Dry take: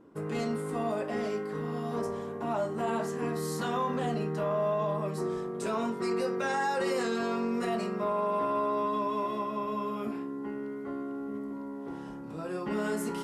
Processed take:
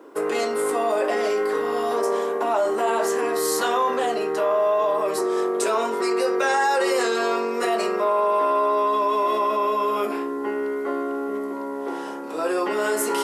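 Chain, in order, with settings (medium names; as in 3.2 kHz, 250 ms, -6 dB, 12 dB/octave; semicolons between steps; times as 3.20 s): in parallel at +1 dB: compressor with a negative ratio -35 dBFS, ratio -1; on the sum: high-pass 350 Hz 24 dB/octave; treble shelf 10 kHz +6 dB; trim +6.5 dB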